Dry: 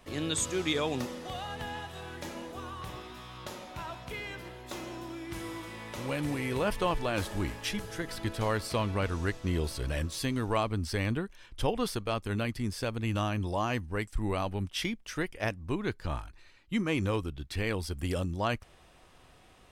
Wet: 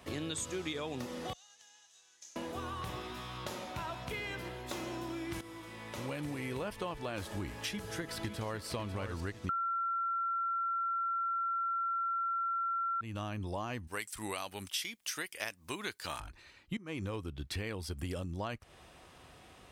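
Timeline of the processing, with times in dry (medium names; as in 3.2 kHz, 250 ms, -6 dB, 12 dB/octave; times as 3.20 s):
1.33–2.36 s: band-pass filter 6.4 kHz, Q 5.7
5.41–7.13 s: fade in equal-power, from -13.5 dB
7.69–8.65 s: echo throw 550 ms, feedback 35%, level -7.5 dB
9.49–13.01 s: bleep 1.36 kHz -15 dBFS
13.87–16.20 s: tilt EQ +4.5 dB/octave
16.77–17.20 s: fade in, from -21.5 dB
whole clip: high-pass 53 Hz; compression 6:1, threshold -38 dBFS; trim +2.5 dB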